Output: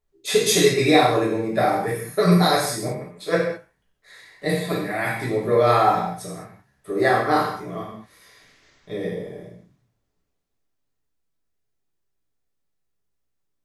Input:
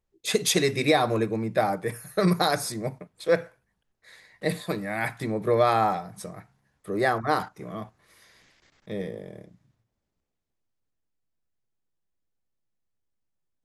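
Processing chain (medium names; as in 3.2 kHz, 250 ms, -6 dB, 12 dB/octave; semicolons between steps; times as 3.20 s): gated-style reverb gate 240 ms falling, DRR -6 dB; trim -2 dB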